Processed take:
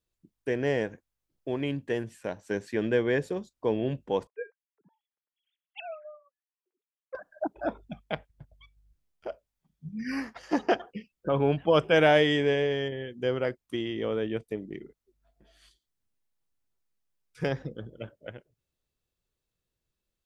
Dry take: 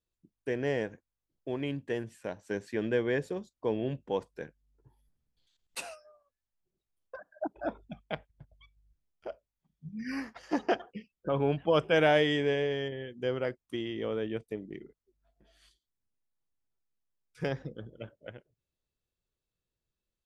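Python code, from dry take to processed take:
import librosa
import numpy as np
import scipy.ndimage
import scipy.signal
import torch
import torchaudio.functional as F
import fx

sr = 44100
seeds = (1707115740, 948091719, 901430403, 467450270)

y = fx.sine_speech(x, sr, at=(4.27, 7.15))
y = F.gain(torch.from_numpy(y), 3.5).numpy()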